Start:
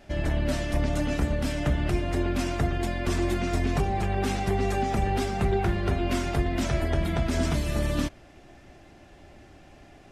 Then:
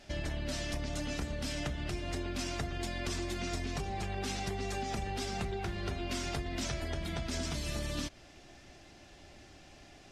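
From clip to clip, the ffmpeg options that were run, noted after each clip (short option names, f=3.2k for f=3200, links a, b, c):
-af "acompressor=threshold=-28dB:ratio=6,equalizer=f=5.2k:w=0.63:g=11,volume=-5.5dB"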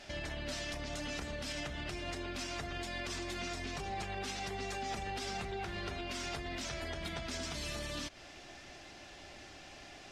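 -filter_complex "[0:a]alimiter=level_in=8.5dB:limit=-24dB:level=0:latency=1:release=175,volume=-8.5dB,asplit=2[a][b];[b]highpass=f=720:p=1,volume=6dB,asoftclip=type=tanh:threshold=-32dB[c];[a][c]amix=inputs=2:normalize=0,lowpass=f=6.2k:p=1,volume=-6dB,volume=3.5dB"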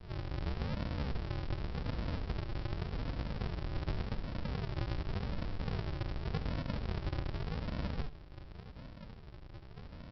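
-af "aresample=11025,acrusher=samples=38:mix=1:aa=0.000001:lfo=1:lforange=22.8:lforate=0.87,aresample=44100,aecho=1:1:71:0.188,volume=4dB"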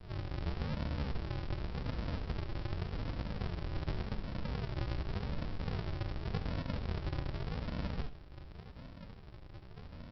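-af "flanger=delay=9.3:depth=7.7:regen=80:speed=0.32:shape=triangular,volume=4dB"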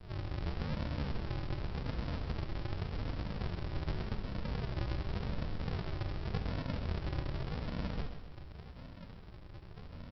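-af "aecho=1:1:130|260|390|520|650:0.316|0.155|0.0759|0.0372|0.0182"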